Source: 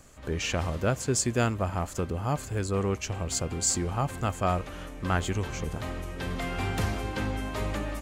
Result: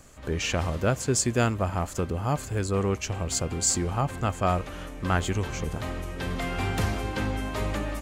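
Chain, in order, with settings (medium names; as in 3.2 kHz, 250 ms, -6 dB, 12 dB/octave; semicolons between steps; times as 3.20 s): 4.00–4.43 s: treble shelf 4.8 kHz -> 9.6 kHz -5.5 dB; trim +2 dB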